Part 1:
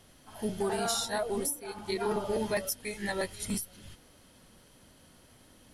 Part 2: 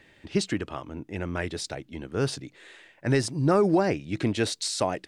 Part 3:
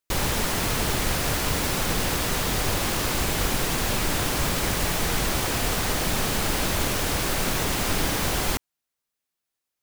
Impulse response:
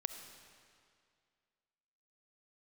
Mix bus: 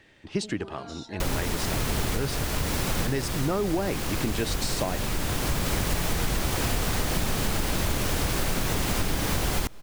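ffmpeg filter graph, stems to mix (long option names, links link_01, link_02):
-filter_complex "[0:a]lowpass=frequency=6200:width=0.5412,lowpass=frequency=6200:width=1.3066,acompressor=threshold=-32dB:ratio=6,volume=-7.5dB[link_01];[1:a]volume=-1dB,asplit=2[link_02][link_03];[2:a]lowshelf=frequency=250:gain=6,adelay=1100,volume=1.5dB,asplit=2[link_04][link_05];[link_05]volume=-17.5dB[link_06];[link_03]apad=whole_len=481851[link_07];[link_04][link_07]sidechaincompress=threshold=-34dB:ratio=3:attack=5.9:release=1010[link_08];[3:a]atrim=start_sample=2205[link_09];[link_06][link_09]afir=irnorm=-1:irlink=0[link_10];[link_01][link_02][link_08][link_10]amix=inputs=4:normalize=0,acompressor=threshold=-22dB:ratio=6"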